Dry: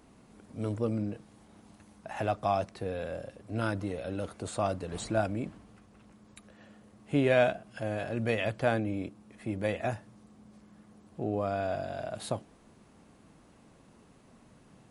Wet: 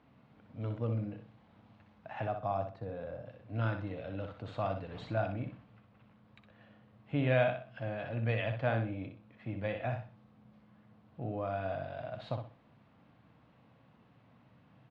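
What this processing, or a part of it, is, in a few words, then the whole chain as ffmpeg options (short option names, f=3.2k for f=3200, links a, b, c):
guitar cabinet: -filter_complex "[0:a]asettb=1/sr,asplit=3[a][b][c];[a]atrim=end=2.244[d];[b]atrim=start=2.24:end=3.26,asetpts=PTS-STARTPTS,afade=t=in:d=0.004:c=qsin,afade=t=out:st=1.016:d=0.004:c=qsin,equalizer=f=2.8k:w=0.85:g=-10.5[e];[c]atrim=start=3.256[f];[d][e]acrossfade=d=0.004:c1=hsin:c2=qsin[g];[g][f]acrossfade=d=0.004:c1=qsin:c2=hsin,highpass=81,equalizer=f=120:t=q:w=4:g=8,equalizer=f=210:t=q:w=4:g=-3,equalizer=f=380:t=q:w=4:g=-10,lowpass=f=3.6k:w=0.5412,lowpass=f=3.6k:w=1.3066,aecho=1:1:62|124|186|248:0.447|0.13|0.0376|0.0109,volume=-4.5dB"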